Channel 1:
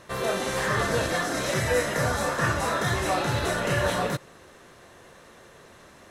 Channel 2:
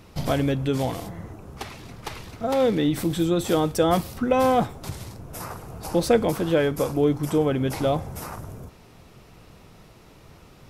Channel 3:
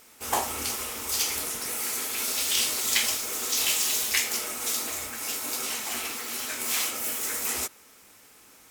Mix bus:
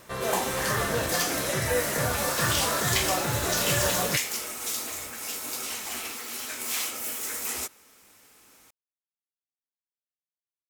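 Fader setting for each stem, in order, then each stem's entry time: -2.5 dB, off, -2.5 dB; 0.00 s, off, 0.00 s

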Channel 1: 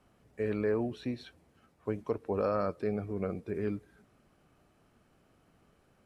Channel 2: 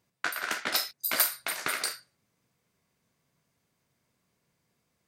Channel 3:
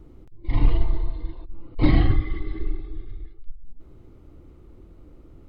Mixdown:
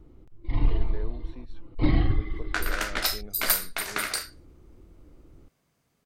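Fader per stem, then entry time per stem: -11.5, +1.5, -4.5 dB; 0.30, 2.30, 0.00 s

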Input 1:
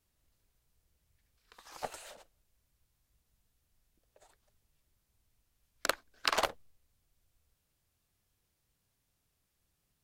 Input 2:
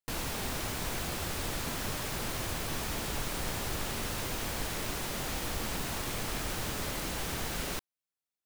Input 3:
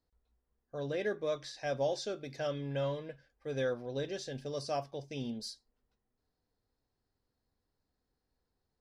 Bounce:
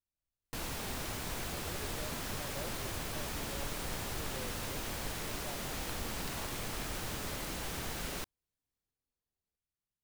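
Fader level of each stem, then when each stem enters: -19.5, -4.0, -15.0 dB; 0.00, 0.45, 0.75 s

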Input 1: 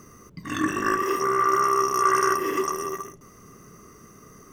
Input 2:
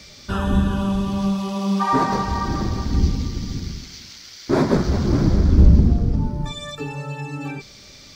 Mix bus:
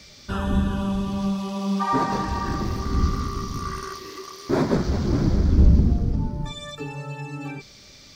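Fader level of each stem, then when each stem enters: -13.0, -3.5 dB; 1.60, 0.00 s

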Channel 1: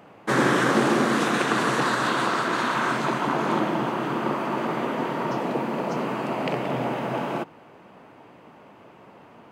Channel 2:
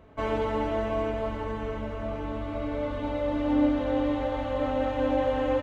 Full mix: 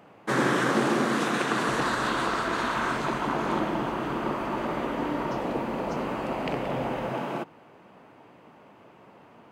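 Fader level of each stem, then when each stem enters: -3.5, -12.0 dB; 0.00, 1.50 s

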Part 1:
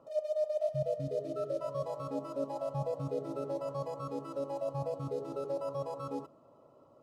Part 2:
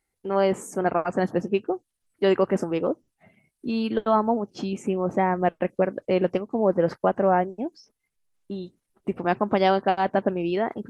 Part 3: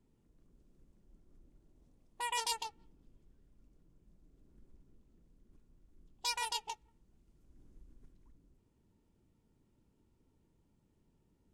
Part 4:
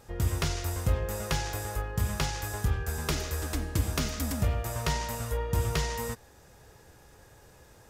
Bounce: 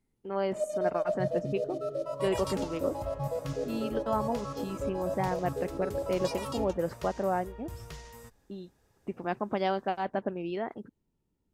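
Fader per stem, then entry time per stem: +1.5, -9.0, -6.0, -15.5 dB; 0.45, 0.00, 0.00, 2.15 s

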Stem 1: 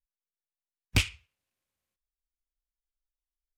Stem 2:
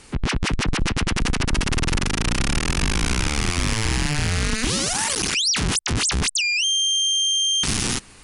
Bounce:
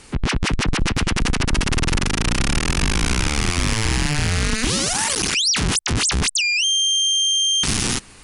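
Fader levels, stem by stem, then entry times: -13.5, +2.0 dB; 0.00, 0.00 s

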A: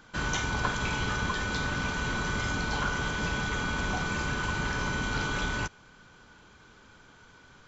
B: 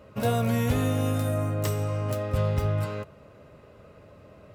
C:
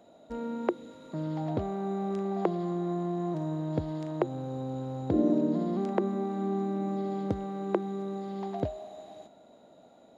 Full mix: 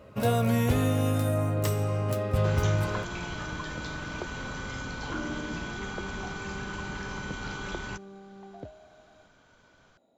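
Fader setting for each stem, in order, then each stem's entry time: -6.5, 0.0, -11.5 dB; 2.30, 0.00, 0.00 s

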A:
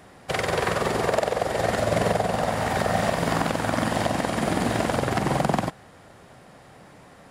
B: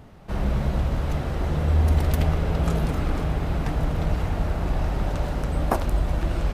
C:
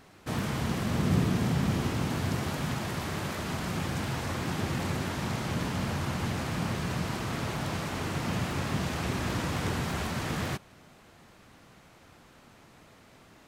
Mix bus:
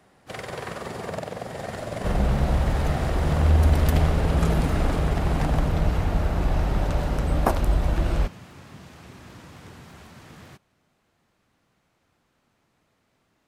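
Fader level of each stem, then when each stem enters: -10.0, +1.5, -14.0 dB; 0.00, 1.75, 0.00 s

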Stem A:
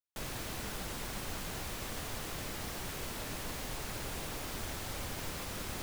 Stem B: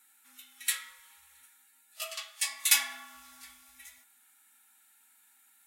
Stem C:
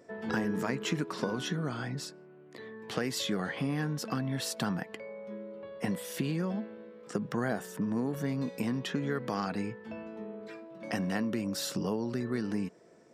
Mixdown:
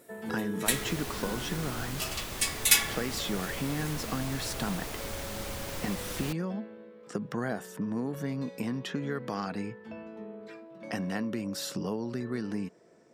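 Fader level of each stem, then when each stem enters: +2.0, +2.0, -1.0 dB; 0.50, 0.00, 0.00 s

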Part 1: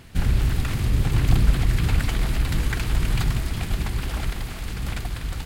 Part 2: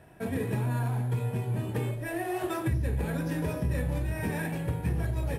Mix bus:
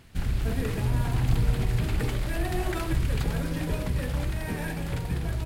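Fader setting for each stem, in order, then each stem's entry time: -7.0, -1.0 dB; 0.00, 0.25 s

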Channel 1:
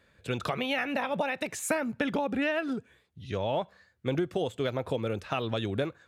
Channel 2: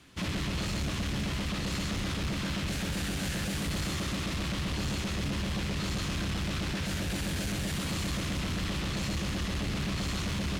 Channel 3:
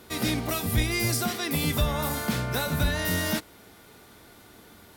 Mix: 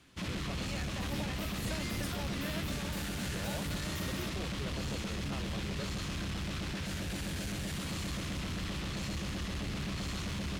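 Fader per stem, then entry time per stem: -15.5, -5.0, -17.5 dB; 0.00, 0.00, 0.90 s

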